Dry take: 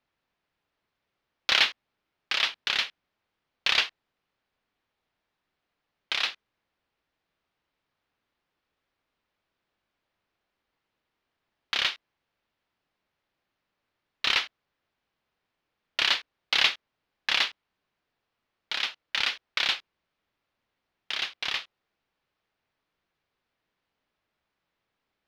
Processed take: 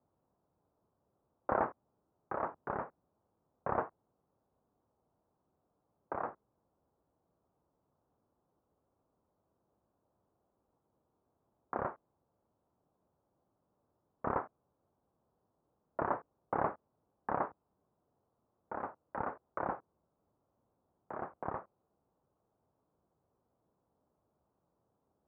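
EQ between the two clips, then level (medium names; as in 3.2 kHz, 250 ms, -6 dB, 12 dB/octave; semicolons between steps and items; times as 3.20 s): high-pass 70 Hz; Bessel low-pass 620 Hz, order 8; peaking EQ 280 Hz -3 dB 2.1 oct; +11.0 dB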